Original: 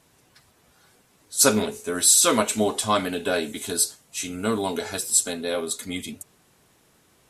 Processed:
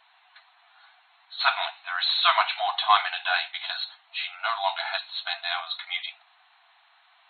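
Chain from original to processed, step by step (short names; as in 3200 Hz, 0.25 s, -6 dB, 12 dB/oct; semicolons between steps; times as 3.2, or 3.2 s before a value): soft clip -10 dBFS, distortion -18 dB; brick-wall FIR band-pass 660–4300 Hz; gain +5.5 dB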